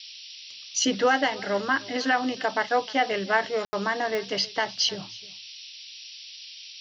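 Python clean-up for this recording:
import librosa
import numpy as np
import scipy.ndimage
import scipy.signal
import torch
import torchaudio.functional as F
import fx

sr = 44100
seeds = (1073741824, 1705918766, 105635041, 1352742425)

y = fx.fix_declick_ar(x, sr, threshold=10.0)
y = fx.fix_ambience(y, sr, seeds[0], print_start_s=6.29, print_end_s=6.79, start_s=3.65, end_s=3.73)
y = fx.noise_reduce(y, sr, print_start_s=6.29, print_end_s=6.79, reduce_db=28.0)
y = fx.fix_echo_inverse(y, sr, delay_ms=309, level_db=-21.5)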